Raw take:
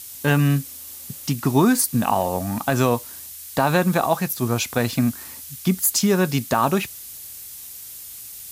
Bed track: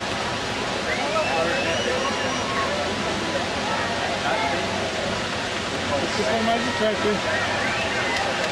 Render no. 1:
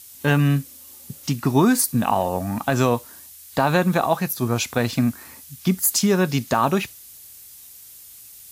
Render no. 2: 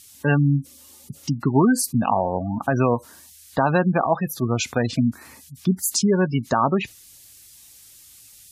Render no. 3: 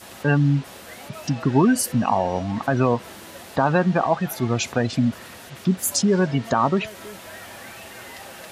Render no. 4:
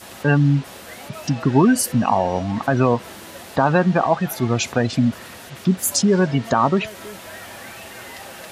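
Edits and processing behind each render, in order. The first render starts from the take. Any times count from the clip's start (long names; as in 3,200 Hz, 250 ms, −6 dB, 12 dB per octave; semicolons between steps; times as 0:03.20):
noise reduction from a noise print 6 dB
Bessel low-pass filter 9,700 Hz, order 2; gate on every frequency bin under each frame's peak −20 dB strong
mix in bed track −16.5 dB
level +2.5 dB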